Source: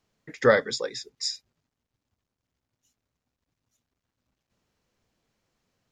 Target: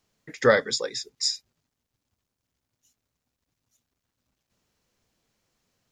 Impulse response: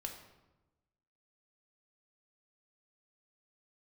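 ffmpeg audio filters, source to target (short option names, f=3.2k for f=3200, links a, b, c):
-af "highshelf=f=4.3k:g=7"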